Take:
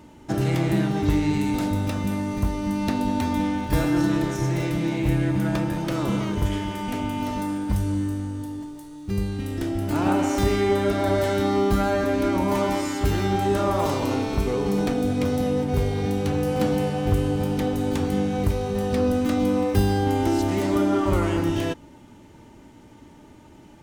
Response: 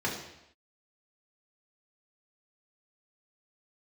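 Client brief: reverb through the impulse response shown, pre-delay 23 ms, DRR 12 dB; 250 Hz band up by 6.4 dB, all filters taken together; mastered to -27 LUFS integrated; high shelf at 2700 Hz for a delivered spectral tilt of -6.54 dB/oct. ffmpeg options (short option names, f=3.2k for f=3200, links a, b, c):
-filter_complex "[0:a]equalizer=f=250:t=o:g=8,highshelf=f=2.7k:g=7.5,asplit=2[a][b];[1:a]atrim=start_sample=2205,adelay=23[c];[b][c]afir=irnorm=-1:irlink=0,volume=-20.5dB[d];[a][d]amix=inputs=2:normalize=0,volume=-8dB"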